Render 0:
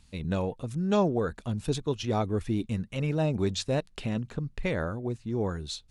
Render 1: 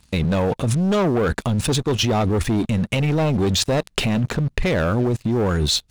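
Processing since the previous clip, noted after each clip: HPF 41 Hz 6 dB/oct; sample leveller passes 3; in parallel at -1 dB: negative-ratio compressor -27 dBFS, ratio -0.5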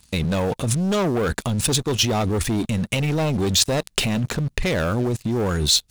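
high shelf 4200 Hz +10 dB; gain -2.5 dB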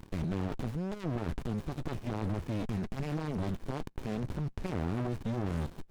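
limiter -15 dBFS, peak gain reduction 9.5 dB; overdrive pedal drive 20 dB, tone 4600 Hz, clips at -15 dBFS; running maximum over 65 samples; gain -9 dB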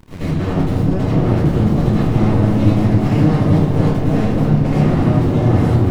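repeats that get brighter 0.28 s, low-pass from 400 Hz, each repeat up 1 oct, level 0 dB; reverb RT60 0.75 s, pre-delay 73 ms, DRR -11.5 dB; gain +3.5 dB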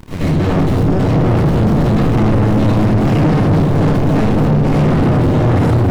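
soft clip -17.5 dBFS, distortion -8 dB; gain +8.5 dB

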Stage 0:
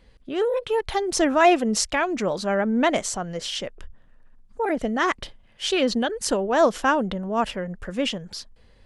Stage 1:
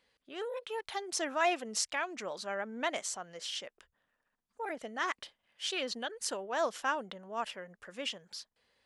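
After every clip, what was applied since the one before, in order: HPF 1000 Hz 6 dB/oct; gain -8.5 dB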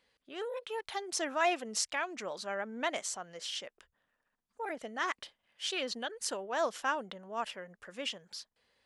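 nothing audible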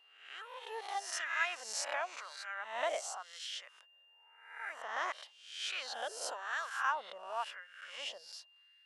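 spectral swells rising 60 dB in 0.67 s; LFO high-pass sine 0.94 Hz 570–1600 Hz; whine 2800 Hz -55 dBFS; gain -8 dB

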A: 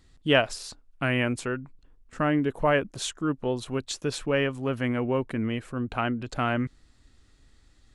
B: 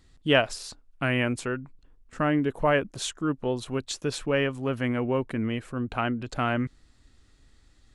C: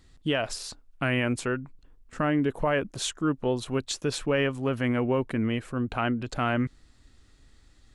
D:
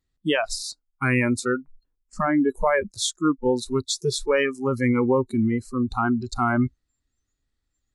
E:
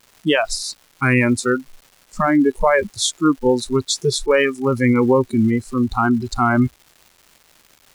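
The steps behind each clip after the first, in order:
nothing audible
limiter -17.5 dBFS, peak gain reduction 10 dB; gain +1.5 dB
spectral noise reduction 27 dB; gain +6 dB
crackle 510/s -43 dBFS; gain +5.5 dB

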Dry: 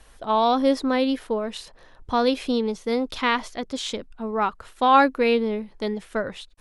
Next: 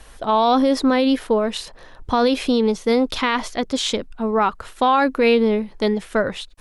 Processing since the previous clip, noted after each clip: limiter -16 dBFS, peak gain reduction 11 dB; gain +7.5 dB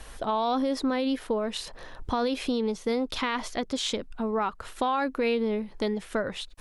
compressor 2:1, threshold -32 dBFS, peak gain reduction 11 dB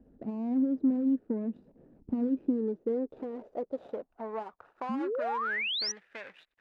median filter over 41 samples; band-pass sweep 240 Hz -> 2000 Hz, 2.15–5.94; painted sound rise, 4.89–5.92, 210–6100 Hz -35 dBFS; gain +3 dB

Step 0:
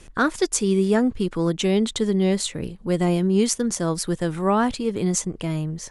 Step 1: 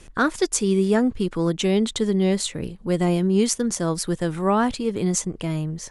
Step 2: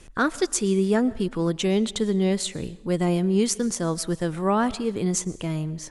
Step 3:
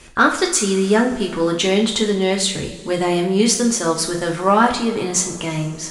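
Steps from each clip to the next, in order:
nothing audible
digital reverb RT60 0.8 s, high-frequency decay 0.95×, pre-delay 80 ms, DRR 19.5 dB; gain -2 dB
overdrive pedal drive 7 dB, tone 7300 Hz, clips at -7 dBFS; two-slope reverb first 0.39 s, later 3.2 s, from -21 dB, DRR 0 dB; gain +5 dB

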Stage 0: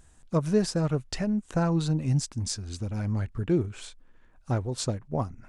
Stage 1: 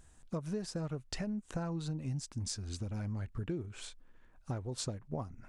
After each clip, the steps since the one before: compressor 6:1, threshold -31 dBFS, peak gain reduction 13 dB; gain -3.5 dB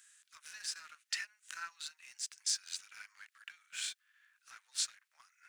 steep high-pass 1500 Hz 36 dB/oct; sample leveller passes 1; harmonic-percussive split harmonic +9 dB; gain +2 dB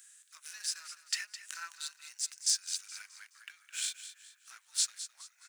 elliptic high-pass 250 Hz; high shelf 5400 Hz +10.5 dB; feedback echo 0.211 s, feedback 37%, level -12.5 dB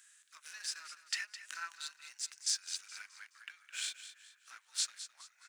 high shelf 5400 Hz -11.5 dB; gain +2 dB

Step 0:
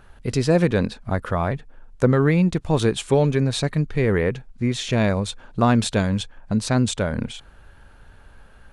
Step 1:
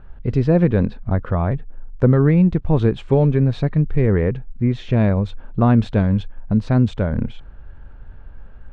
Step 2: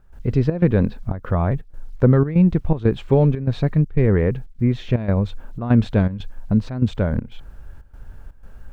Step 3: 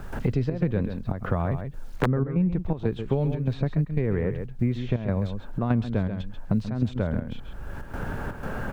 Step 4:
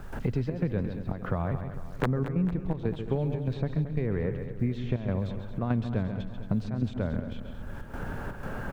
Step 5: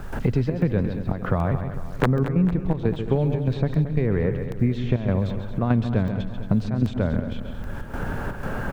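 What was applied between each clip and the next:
LPF 3200 Hz 12 dB/oct; tilt -2.5 dB/oct; reverse; upward compressor, threshold -31 dBFS; reverse; gain -2 dB
bit-crush 11-bit; step gate ".xxx.xxxx" 121 bpm -12 dB
echo 0.134 s -10.5 dB; wrapped overs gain 3 dB; three-band squash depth 100%; gain -8 dB
feedback echo 0.225 s, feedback 59%, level -12 dB; gain -4 dB
crackling interface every 0.78 s, samples 64, zero, from 0.62; gain +7 dB

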